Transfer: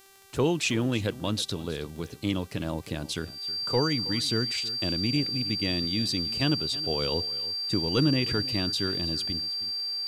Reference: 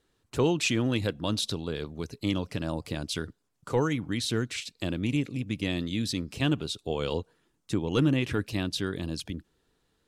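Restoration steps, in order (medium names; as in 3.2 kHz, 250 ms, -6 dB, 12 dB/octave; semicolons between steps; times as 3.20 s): de-click; de-hum 390.2 Hz, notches 39; band-stop 4.7 kHz, Q 30; inverse comb 320 ms -17.5 dB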